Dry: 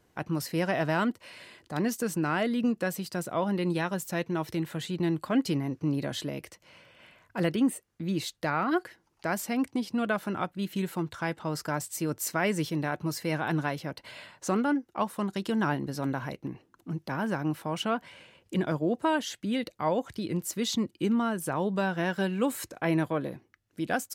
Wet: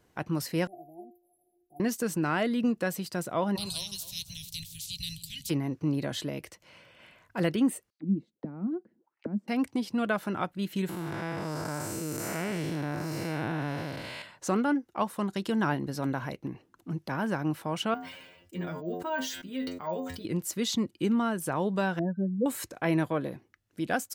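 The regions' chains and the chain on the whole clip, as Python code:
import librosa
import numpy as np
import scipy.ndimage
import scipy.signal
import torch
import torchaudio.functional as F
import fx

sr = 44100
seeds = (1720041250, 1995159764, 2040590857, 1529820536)

y = fx.chain(x, sr, fx.brickwall_bandstop(low_hz=910.0, high_hz=9800.0),
    fx.bass_treble(bass_db=2, treble_db=9),
    fx.stiff_resonator(f0_hz=350.0, decay_s=0.33, stiffness=0.008), at=(0.67, 1.8))
y = fx.spec_clip(y, sr, under_db=30, at=(3.55, 5.49), fade=0.02)
y = fx.cheby2_bandstop(y, sr, low_hz=490.0, high_hz=1100.0, order=4, stop_db=80, at=(3.55, 5.49), fade=0.02)
y = fx.echo_alternate(y, sr, ms=133, hz=1200.0, feedback_pct=52, wet_db=-11, at=(3.55, 5.49), fade=0.02)
y = fx.chain(y, sr, fx.peak_eq(hz=300.0, db=8.5, octaves=2.3),
    fx.auto_wah(base_hz=210.0, top_hz=4500.0, q=5.4, full_db=-25.0, direction='down'), at=(7.9, 9.48))
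y = fx.chain(y, sr, fx.spec_blur(span_ms=271.0),
    fx.env_flatten(amount_pct=50), at=(10.89, 14.22))
y = fx.chain(y, sr, fx.stiff_resonator(f0_hz=86.0, decay_s=0.27, stiffness=0.002),
    fx.resample_bad(factor=2, down='filtered', up='hold'),
    fx.sustainer(db_per_s=49.0), at=(17.94, 20.25))
y = fx.chain(y, sr, fx.spec_expand(power=3.1),
    fx.band_shelf(hz=3100.0, db=-12.5, octaves=2.9), at=(21.99, 22.46))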